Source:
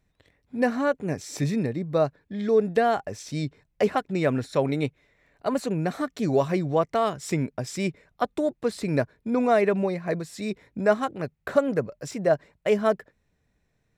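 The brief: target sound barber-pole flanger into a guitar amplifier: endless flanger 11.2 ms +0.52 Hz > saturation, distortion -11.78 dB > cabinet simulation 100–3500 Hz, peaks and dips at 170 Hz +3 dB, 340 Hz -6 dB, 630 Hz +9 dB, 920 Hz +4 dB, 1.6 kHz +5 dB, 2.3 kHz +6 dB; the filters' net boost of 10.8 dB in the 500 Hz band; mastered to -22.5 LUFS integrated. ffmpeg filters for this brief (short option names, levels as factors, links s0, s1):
-filter_complex "[0:a]equalizer=f=500:t=o:g=7.5,asplit=2[s0][s1];[s1]adelay=11.2,afreqshift=0.52[s2];[s0][s2]amix=inputs=2:normalize=1,asoftclip=threshold=0.141,highpass=100,equalizer=f=170:t=q:w=4:g=3,equalizer=f=340:t=q:w=4:g=-6,equalizer=f=630:t=q:w=4:g=9,equalizer=f=920:t=q:w=4:g=4,equalizer=f=1600:t=q:w=4:g=5,equalizer=f=2300:t=q:w=4:g=6,lowpass=f=3500:w=0.5412,lowpass=f=3500:w=1.3066,volume=1.12"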